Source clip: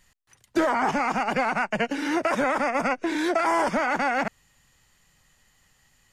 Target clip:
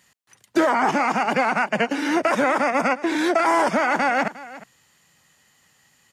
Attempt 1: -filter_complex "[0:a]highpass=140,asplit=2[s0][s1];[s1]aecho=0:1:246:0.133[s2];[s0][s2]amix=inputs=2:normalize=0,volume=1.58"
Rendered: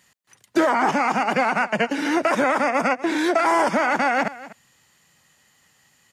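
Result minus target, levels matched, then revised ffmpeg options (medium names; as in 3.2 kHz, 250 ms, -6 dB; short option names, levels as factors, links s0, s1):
echo 111 ms early
-filter_complex "[0:a]highpass=140,asplit=2[s0][s1];[s1]aecho=0:1:357:0.133[s2];[s0][s2]amix=inputs=2:normalize=0,volume=1.58"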